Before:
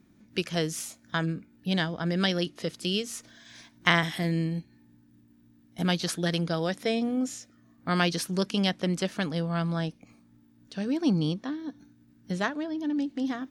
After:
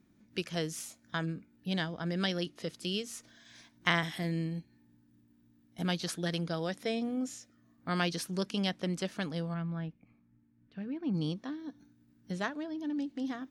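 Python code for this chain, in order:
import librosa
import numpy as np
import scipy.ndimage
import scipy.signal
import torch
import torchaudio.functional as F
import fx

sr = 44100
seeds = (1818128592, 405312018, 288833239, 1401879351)

y = fx.curve_eq(x, sr, hz=(150.0, 570.0, 2300.0, 6800.0), db=(0, -8, -4, -29), at=(9.53, 11.13), fade=0.02)
y = y * librosa.db_to_amplitude(-6.0)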